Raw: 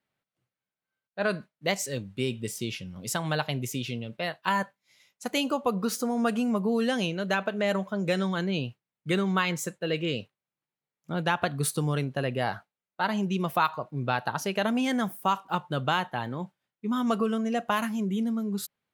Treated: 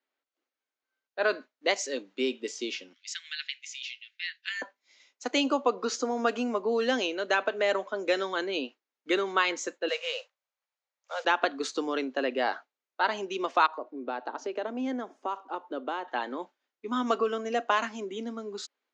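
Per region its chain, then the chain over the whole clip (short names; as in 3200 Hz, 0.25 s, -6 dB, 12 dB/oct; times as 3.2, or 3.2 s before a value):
2.93–4.62 steep high-pass 1800 Hz 48 dB/oct + high shelf 9200 Hz -11.5 dB
9.88–11.25 modulation noise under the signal 20 dB + steep high-pass 490 Hz 96 dB/oct
13.66–16.08 HPF 270 Hz + tilt shelf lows +8.5 dB, about 910 Hz + compressor 1.5:1, threshold -43 dBFS
whole clip: Chebyshev band-pass 260–6900 Hz, order 5; AGC gain up to 4 dB; gain -2 dB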